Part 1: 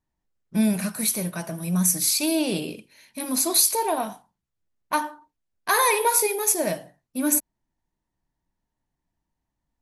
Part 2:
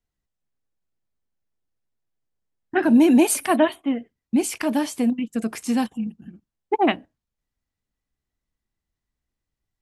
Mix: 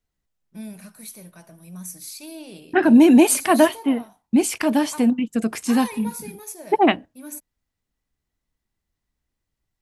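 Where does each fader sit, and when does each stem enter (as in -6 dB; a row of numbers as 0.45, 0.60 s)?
-15.0, +3.0 dB; 0.00, 0.00 s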